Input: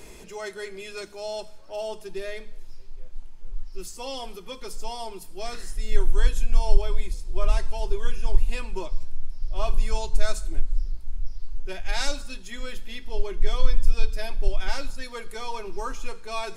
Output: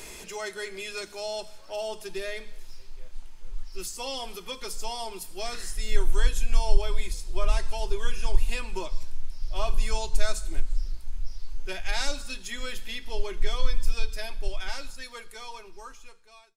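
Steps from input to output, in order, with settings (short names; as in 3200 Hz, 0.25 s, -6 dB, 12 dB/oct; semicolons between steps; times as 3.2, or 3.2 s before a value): ending faded out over 3.73 s; mismatched tape noise reduction encoder only; gain -2.5 dB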